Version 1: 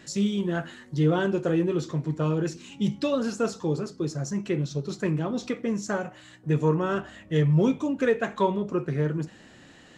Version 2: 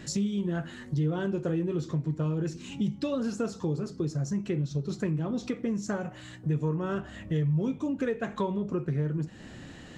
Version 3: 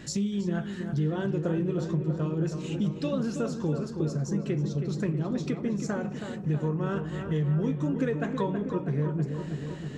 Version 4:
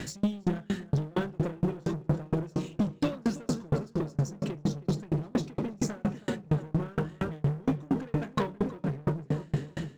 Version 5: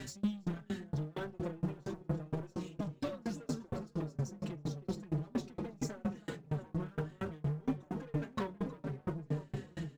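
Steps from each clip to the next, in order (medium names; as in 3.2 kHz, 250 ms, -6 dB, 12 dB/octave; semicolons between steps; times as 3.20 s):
bass shelf 220 Hz +11 dB; compression 3:1, threshold -32 dBFS, peak gain reduction 16 dB; trim +2 dB
filtered feedback delay 322 ms, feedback 71%, low-pass 2.2 kHz, level -7 dB
waveshaping leveller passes 3; sawtooth tremolo in dB decaying 4.3 Hz, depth 34 dB
in parallel at -9 dB: hard clipper -32.5 dBFS, distortion -5 dB; on the sum: endless flanger 4.6 ms -1.7 Hz; trim -6.5 dB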